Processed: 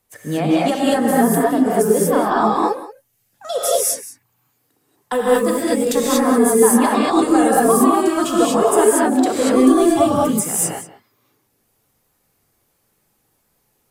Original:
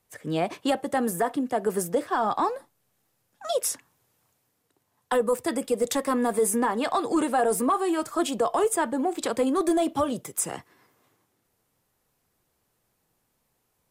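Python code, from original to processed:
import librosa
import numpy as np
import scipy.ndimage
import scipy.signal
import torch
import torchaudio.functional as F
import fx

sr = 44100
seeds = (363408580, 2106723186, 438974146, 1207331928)

p1 = fx.law_mismatch(x, sr, coded='A', at=(5.15, 5.88))
p2 = fx.dynamic_eq(p1, sr, hz=160.0, q=1.0, threshold_db=-41.0, ratio=4.0, max_db=6)
p3 = fx.dereverb_blind(p2, sr, rt60_s=0.83)
p4 = fx.high_shelf(p3, sr, hz=10000.0, db=4.5)
p5 = p4 + fx.echo_single(p4, sr, ms=183, db=-16.0, dry=0)
p6 = fx.rev_gated(p5, sr, seeds[0], gate_ms=260, shape='rising', drr_db=-6.0)
y = p6 * librosa.db_to_amplitude(2.0)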